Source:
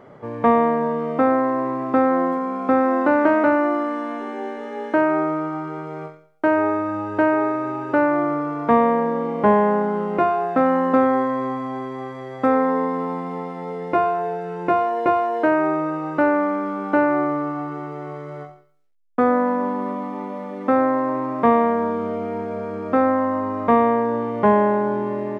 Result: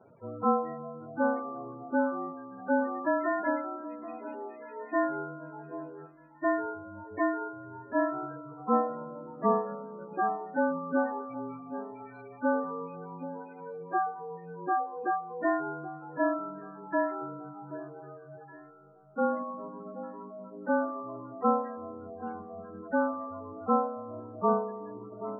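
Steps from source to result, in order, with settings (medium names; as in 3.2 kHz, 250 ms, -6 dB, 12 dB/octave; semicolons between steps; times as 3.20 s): frequency axis rescaled in octaves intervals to 108%; reverb removal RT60 1.8 s; 16.59–17.22 s: peaking EQ 81 Hz -13 dB 2.1 oct; spectral gate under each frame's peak -15 dB strong; echo whose repeats swap between lows and highs 777 ms, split 960 Hz, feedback 52%, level -12 dB; trim -8 dB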